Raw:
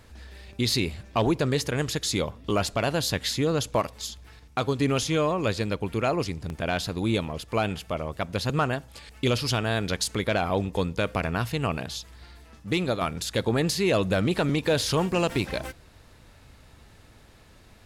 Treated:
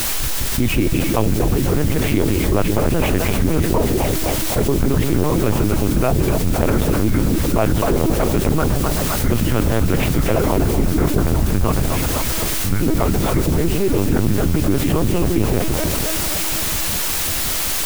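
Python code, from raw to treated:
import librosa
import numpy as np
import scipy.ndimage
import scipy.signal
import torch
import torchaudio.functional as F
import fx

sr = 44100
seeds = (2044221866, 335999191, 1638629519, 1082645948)

y = fx.pitch_trill(x, sr, semitones=-9.0, every_ms=97)
y = fx.low_shelf(y, sr, hz=340.0, db=11.0)
y = fx.rider(y, sr, range_db=10, speed_s=0.5)
y = fx.air_absorb(y, sr, metres=410.0)
y = y + 0.38 * np.pad(y, (int(2.8 * sr / 1000.0), 0))[:len(y)]
y = fx.echo_split(y, sr, split_hz=460.0, low_ms=158, high_ms=254, feedback_pct=52, wet_db=-6)
y = fx.lpc_vocoder(y, sr, seeds[0], excitation='pitch_kept', order=8)
y = fx.quant_dither(y, sr, seeds[1], bits=6, dither='triangular')
y = fx.env_flatten(y, sr, amount_pct=70)
y = F.gain(torch.from_numpy(y), -1.0).numpy()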